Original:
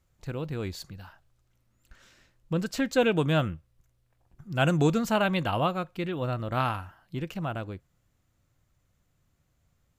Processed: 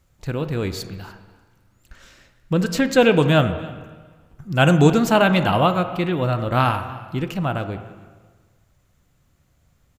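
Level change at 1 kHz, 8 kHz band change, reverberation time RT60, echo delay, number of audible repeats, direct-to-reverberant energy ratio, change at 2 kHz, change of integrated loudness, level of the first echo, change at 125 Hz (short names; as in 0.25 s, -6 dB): +9.0 dB, +8.5 dB, 1.4 s, 0.295 s, 1, 9.0 dB, +9.0 dB, +9.0 dB, -21.5 dB, +9.0 dB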